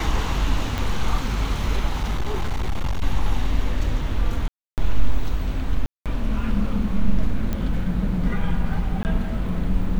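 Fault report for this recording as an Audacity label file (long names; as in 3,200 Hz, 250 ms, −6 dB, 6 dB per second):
0.780000	0.780000	click
2.020000	3.020000	clipping −18.5 dBFS
4.480000	4.780000	drop-out 298 ms
5.860000	6.060000	drop-out 197 ms
7.530000	7.530000	click −13 dBFS
9.030000	9.050000	drop-out 19 ms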